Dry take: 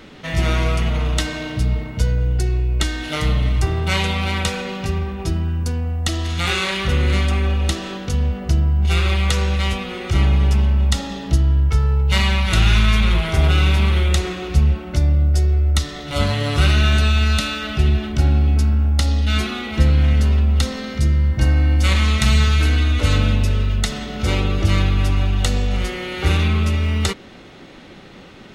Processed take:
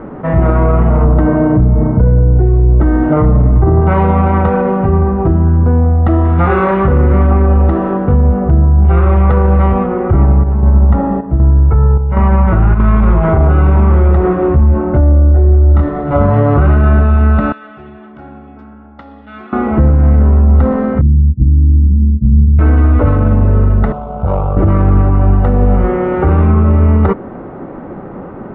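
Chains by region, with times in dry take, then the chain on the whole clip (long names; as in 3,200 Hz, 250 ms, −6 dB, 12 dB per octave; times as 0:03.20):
0:01.04–0:03.81: high-pass filter 150 Hz 6 dB per octave + spectral tilt −3 dB per octave
0:09.86–0:12.80: high-frequency loss of the air 250 metres + square-wave tremolo 1.3 Hz, depth 65%, duty 75%
0:14.36–0:15.89: low-pass filter 8,400 Hz + double-tracking delay 24 ms −4 dB
0:17.52–0:19.53: first difference + hollow resonant body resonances 230/3,400 Hz, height 7 dB, ringing for 20 ms
0:21.01–0:22.59: inverse Chebyshev band-stop filter 610–4,900 Hz, stop band 50 dB + expander for the loud parts 2.5 to 1, over −27 dBFS
0:23.92–0:24.57: parametric band 190 Hz −4 dB 1.4 octaves + phaser with its sweep stopped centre 760 Hz, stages 4 + tube saturation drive 19 dB, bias 0.7
whole clip: low-pass filter 1,200 Hz 24 dB per octave; low-shelf EQ 100 Hz −6 dB; boost into a limiter +17 dB; level −1 dB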